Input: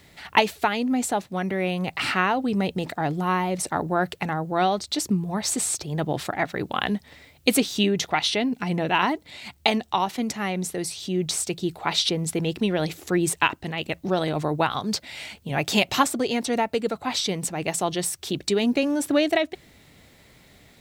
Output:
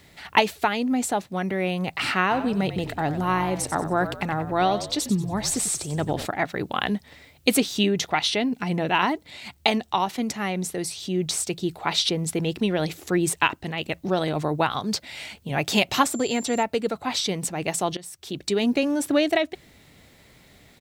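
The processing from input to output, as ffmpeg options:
-filter_complex "[0:a]asplit=3[a][b][c];[a]afade=t=out:st=2.3:d=0.02[d];[b]asplit=5[e][f][g][h][i];[f]adelay=93,afreqshift=-51,volume=-11dB[j];[g]adelay=186,afreqshift=-102,volume=-18.7dB[k];[h]adelay=279,afreqshift=-153,volume=-26.5dB[l];[i]adelay=372,afreqshift=-204,volume=-34.2dB[m];[e][j][k][l][m]amix=inputs=5:normalize=0,afade=t=in:st=2.3:d=0.02,afade=t=out:st=6.25:d=0.02[n];[c]afade=t=in:st=6.25:d=0.02[o];[d][n][o]amix=inputs=3:normalize=0,asettb=1/sr,asplit=3[p][q][r];[p]atrim=end=16.054[s];[q]atrim=start=16.05:end=16.63,asetpts=PTS-STARTPTS,afade=t=in:d=0.004:c=qsin,afade=t=out:st=0.576:d=0.004:c=qsin,aeval=exprs='val(0)+0.0126*sin(2*PI*7300*n/s)':c=same[t];[r]atrim=start=16.626[u];[s][t]acrossfade=d=0.004:c1=hsin:c2=qsin[v];[v][u]acrossfade=d=0.004:c1=qsin:c2=hsin,asplit=2[w][x];[w]atrim=end=17.97,asetpts=PTS-STARTPTS,afade=t=out:st=17.966:d=0.004:c=hsin:silence=0.105925[y];[x]atrim=start=17.97,asetpts=PTS-STARTPTS,afade=t=in:d=0.66:silence=0.105925[z];[y][z]concat=n=2:v=0:a=1"

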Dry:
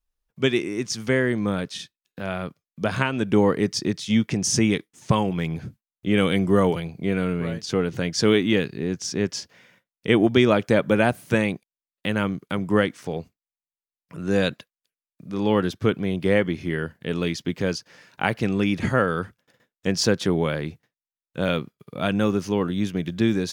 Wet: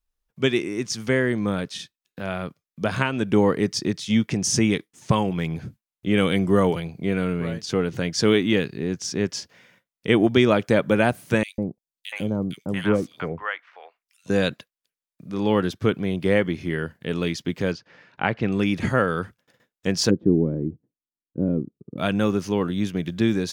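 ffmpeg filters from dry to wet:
-filter_complex "[0:a]asettb=1/sr,asplit=3[a][b][c];[a]atrim=end=11.434[d];[b]atrim=start=11.43:end=14.3,asetpts=PTS-STARTPTS,afade=t=in:d=0.004:c=qsin,afade=t=out:st=2.866:d=0.004:c=qsin,acrossover=split=800|2800[e][f][g];[e]adelay=150[h];[f]adelay=690[i];[h][i][g]amix=inputs=3:normalize=0,atrim=end_sample=126567[j];[c]atrim=start=14.296[k];[d][j]acrossfade=d=0.004:c1=hsin:c2=qsin[l];[l][k]acrossfade=d=0.004:c1=qsin:c2=hsin,asettb=1/sr,asplit=3[m][n][o];[m]atrim=end=17.724[p];[n]atrim=start=17.72:end=18.52,asetpts=PTS-STARTPTS,afade=t=in:d=0.004:c=qsin,afade=t=out:st=0.796:d=0.004:c=qsin,lowpass=3.1k[q];[o]atrim=start=18.516[r];[p][q]acrossfade=d=0.004:c1=hsin:c2=qsin[s];[s][r]acrossfade=d=0.004:c1=qsin:c2=hsin,asplit=3[t][u][v];[t]afade=t=out:st=20.09:d=0.02[w];[u]lowpass=f=310:t=q:w=2.3,afade=t=in:st=20.09:d=0.02,afade=t=out:st=21.97:d=0.02[x];[v]afade=t=in:st=21.97:d=0.02[y];[w][x][y]amix=inputs=3:normalize=0"

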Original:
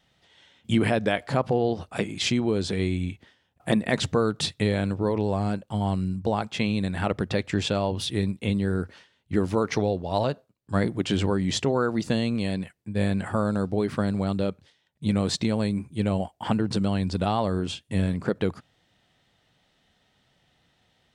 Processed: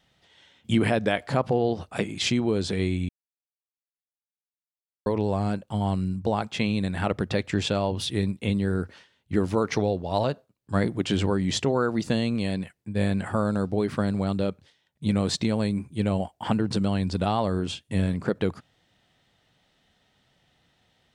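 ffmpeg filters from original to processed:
-filter_complex "[0:a]asplit=3[a][b][c];[a]atrim=end=3.09,asetpts=PTS-STARTPTS,afade=t=out:st=3.086:d=0.004:c=hsin[d];[b]atrim=start=3.09:end=5.06,asetpts=PTS-STARTPTS,volume=0[e];[c]atrim=start=5.06,asetpts=PTS-STARTPTS,afade=t=in:d=0.004:c=hsin[f];[d][e][f]concat=n=3:v=0:a=1"

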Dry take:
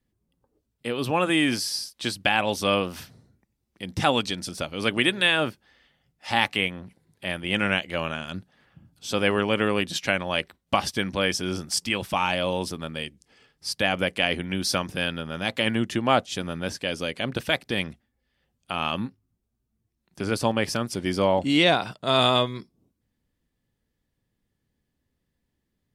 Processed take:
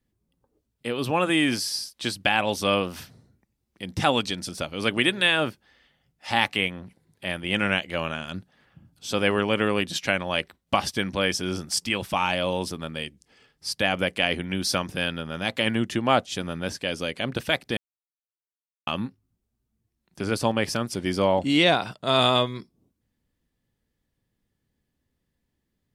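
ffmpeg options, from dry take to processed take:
-filter_complex "[0:a]asplit=3[a][b][c];[a]atrim=end=17.77,asetpts=PTS-STARTPTS,afade=t=out:st=17.766:d=0.004:c=hsin[d];[b]atrim=start=17.77:end=18.87,asetpts=PTS-STARTPTS,volume=0[e];[c]atrim=start=18.87,asetpts=PTS-STARTPTS,afade=t=in:d=0.004:c=hsin[f];[d][e][f]concat=n=3:v=0:a=1"

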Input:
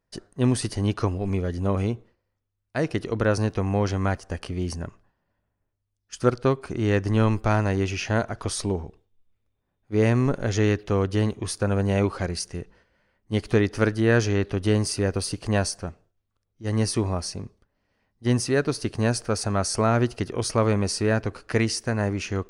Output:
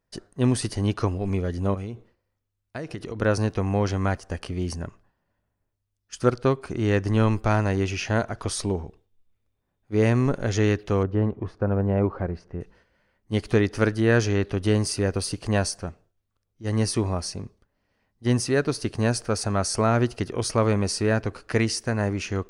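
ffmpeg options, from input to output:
-filter_complex "[0:a]asettb=1/sr,asplit=3[a][b][c];[a]atrim=end=1.744[d];[b]atrim=start=1.74:end=3.22,asetpts=PTS-STARTPTS,afade=t=in:d=0.004:c=qsin,afade=t=out:st=1.476:d=0.004:c=qsin,acompressor=threshold=-28dB:ratio=12:attack=3.2:release=140:knee=1:detection=peak[e];[c]atrim=start=3.216[f];[d][e]acrossfade=d=0.004:c1=hsin:c2=qsin[g];[g][f]acrossfade=d=0.004:c1=qsin:c2=hsin,asettb=1/sr,asplit=3[h][i][j];[h]atrim=end=11.034[k];[i]atrim=start=11.03:end=12.61,asetpts=PTS-STARTPTS,afade=t=in:d=0.004:c=qsin,afade=t=out:st=1.576:d=0.004:c=qsin,lowpass=1.2k[l];[j]atrim=start=12.606[m];[k][l]acrossfade=d=0.004:c1=hsin:c2=qsin[n];[n][m]acrossfade=d=0.004:c1=qsin:c2=hsin"

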